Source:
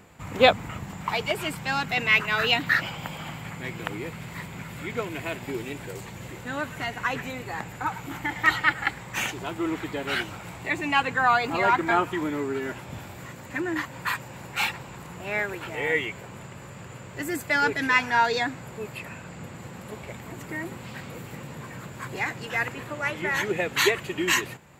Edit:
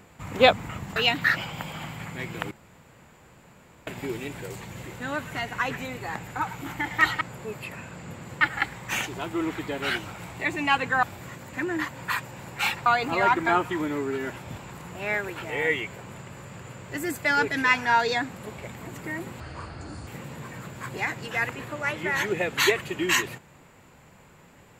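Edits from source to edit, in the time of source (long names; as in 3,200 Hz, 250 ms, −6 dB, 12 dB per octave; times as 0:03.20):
0:00.96–0:02.41: remove
0:03.96–0:05.32: fill with room tone
0:11.28–0:13.00: move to 0:14.83
0:18.54–0:19.74: move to 0:08.66
0:20.85–0:21.26: play speed 61%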